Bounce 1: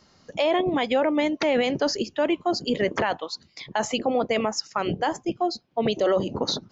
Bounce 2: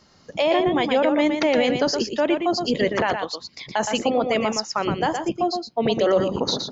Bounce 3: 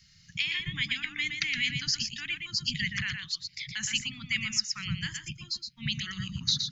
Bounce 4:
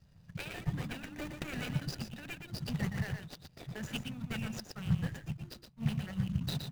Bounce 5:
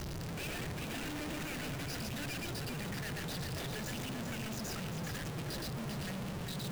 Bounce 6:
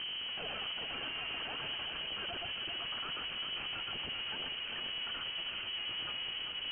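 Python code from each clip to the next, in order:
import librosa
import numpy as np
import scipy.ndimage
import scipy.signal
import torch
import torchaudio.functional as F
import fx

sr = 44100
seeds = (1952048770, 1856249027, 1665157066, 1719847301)

y1 = x + 10.0 ** (-6.0 / 20.0) * np.pad(x, (int(118 * sr / 1000.0), 0))[:len(x)]
y1 = F.gain(torch.from_numpy(y1), 2.0).numpy()
y2 = scipy.signal.sosfilt(scipy.signal.cheby1(3, 1.0, [150.0, 2000.0], 'bandstop', fs=sr, output='sos'), y1)
y3 = scipy.signal.medfilt(y2, 41)
y3 = F.gain(torch.from_numpy(y3), 3.5).numpy()
y4 = np.sign(y3) * np.sqrt(np.mean(np.square(y3)))
y4 = y4 + 10.0 ** (-7.0 / 20.0) * np.pad(y4, (int(393 * sr / 1000.0), 0))[:len(y4)]
y4 = F.gain(torch.from_numpy(y4), -2.5).numpy()
y5 = fx.freq_invert(y4, sr, carrier_hz=3100)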